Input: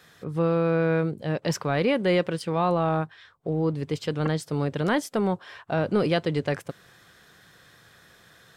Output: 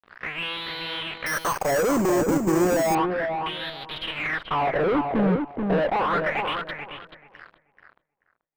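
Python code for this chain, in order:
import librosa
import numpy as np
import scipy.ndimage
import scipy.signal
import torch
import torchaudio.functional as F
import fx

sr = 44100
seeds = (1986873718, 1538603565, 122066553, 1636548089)

p1 = fx.halfwave_hold(x, sr)
p2 = fx.rider(p1, sr, range_db=4, speed_s=0.5)
p3 = p1 + F.gain(torch.from_numpy(p2), 3.0).numpy()
p4 = fx.wah_lfo(p3, sr, hz=0.33, low_hz=280.0, high_hz=3900.0, q=5.4)
p5 = fx.fuzz(p4, sr, gain_db=39.0, gate_db=-46.0)
p6 = fx.air_absorb(p5, sr, metres=490.0)
p7 = fx.echo_filtered(p6, sr, ms=434, feedback_pct=20, hz=2100.0, wet_db=-4.5)
p8 = fx.resample_bad(p7, sr, factor=6, down='none', up='hold', at=(1.26, 2.95))
y = F.gain(torch.from_numpy(p8), -6.0).numpy()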